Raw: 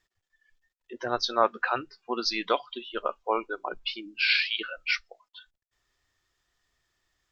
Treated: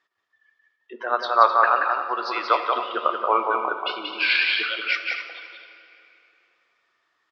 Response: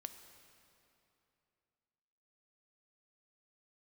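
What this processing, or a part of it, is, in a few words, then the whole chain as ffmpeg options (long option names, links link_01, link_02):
station announcement: -filter_complex "[0:a]asettb=1/sr,asplit=3[link_01][link_02][link_03];[link_01]atrim=end=0.964[link_04];[link_02]atrim=start=0.96:end=2.73,asetpts=PTS-STARTPTS,afade=type=in:duration=0.004:curve=qsin,afade=type=out:start_time=1.766:duration=0.004:curve=qsin,acrossover=split=380 4100:gain=0.0794 1 0.2[link_05][link_06][link_07];[link_05][link_06][link_07]amix=inputs=3:normalize=0[link_08];[link_03]atrim=start=2.726[link_09];[link_04][link_08]acrossfade=duration=0.004:curve1=hsin:curve2=qsin[link_10];[link_10][link_09]acrossfade=duration=0.004:curve1=qsin:curve2=hsin,highpass=310,lowpass=3800,equalizer=frequency=1200:width_type=o:width=0.57:gain=7.5,aecho=1:1:180.8|259.5:0.631|0.282[link_11];[1:a]atrim=start_sample=2205[link_12];[link_11][link_12]afir=irnorm=-1:irlink=0,volume=8dB"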